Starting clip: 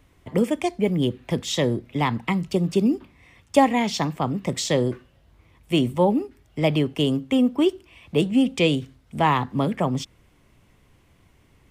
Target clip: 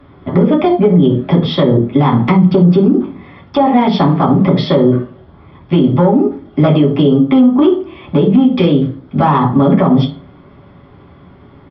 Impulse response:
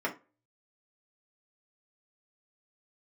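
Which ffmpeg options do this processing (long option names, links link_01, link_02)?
-filter_complex "[0:a]acompressor=threshold=-24dB:ratio=4,aresample=11025,aeval=exprs='clip(val(0),-1,0.0841)':channel_layout=same,aresample=44100,aeval=exprs='0.251*(cos(1*acos(clip(val(0)/0.251,-1,1)))-cos(1*PI/2))+0.0112*(cos(3*acos(clip(val(0)/0.251,-1,1)))-cos(3*PI/2))':channel_layout=same[link_01];[1:a]atrim=start_sample=2205,asetrate=27342,aresample=44100[link_02];[link_01][link_02]afir=irnorm=-1:irlink=0,alimiter=level_in=10dB:limit=-1dB:release=50:level=0:latency=1,volume=-1dB"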